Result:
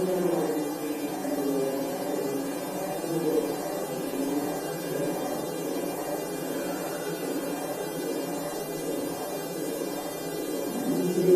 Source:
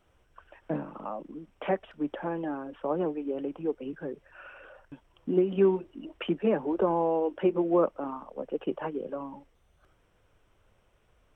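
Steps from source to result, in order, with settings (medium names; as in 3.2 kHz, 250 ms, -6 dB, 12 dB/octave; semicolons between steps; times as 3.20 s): mains buzz 400 Hz, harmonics 35, -59 dBFS 0 dB/octave; echo with a slow build-up 170 ms, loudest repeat 8, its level -11.5 dB; Paulstretch 4.7×, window 0.10 s, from 2.98 s; trim +1 dB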